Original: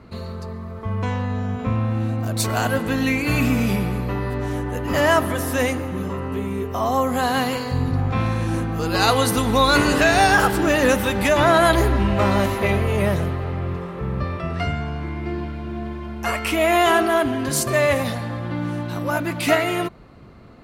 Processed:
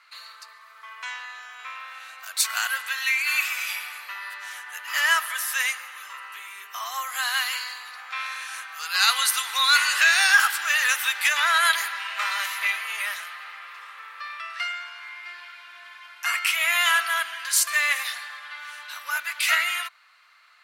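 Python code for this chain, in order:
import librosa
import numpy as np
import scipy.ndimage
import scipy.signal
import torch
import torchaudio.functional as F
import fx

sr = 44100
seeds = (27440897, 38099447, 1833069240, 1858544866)

y = scipy.signal.sosfilt(scipy.signal.butter(4, 1400.0, 'highpass', fs=sr, output='sos'), x)
y = y * 10.0 ** (3.0 / 20.0)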